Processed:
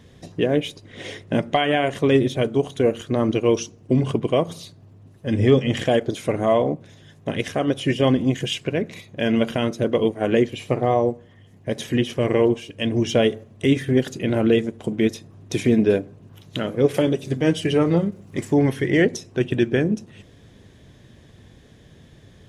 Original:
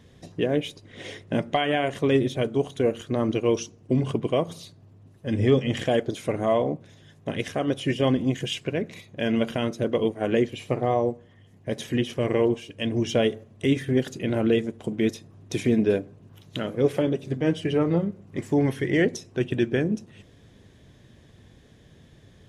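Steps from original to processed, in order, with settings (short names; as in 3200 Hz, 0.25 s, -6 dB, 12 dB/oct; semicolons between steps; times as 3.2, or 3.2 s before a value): 16.94–18.45 high shelf 3900 Hz +9.5 dB; ending taper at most 520 dB/s; gain +4 dB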